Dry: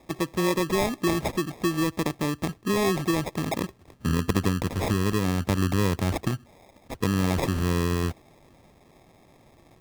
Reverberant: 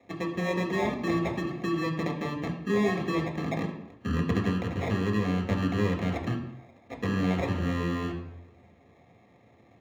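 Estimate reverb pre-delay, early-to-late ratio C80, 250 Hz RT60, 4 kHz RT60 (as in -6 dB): 3 ms, 10.5 dB, 0.75 s, 0.65 s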